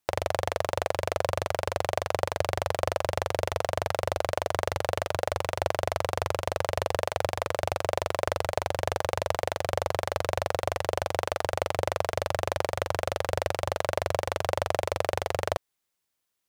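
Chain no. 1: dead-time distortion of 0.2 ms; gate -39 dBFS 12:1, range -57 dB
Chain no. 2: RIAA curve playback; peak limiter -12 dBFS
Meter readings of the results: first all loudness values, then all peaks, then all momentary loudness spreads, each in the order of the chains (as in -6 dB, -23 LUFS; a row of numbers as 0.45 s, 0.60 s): -30.0 LUFS, -28.0 LUFS; -7.5 dBFS, -12.0 dBFS; 1 LU, 1 LU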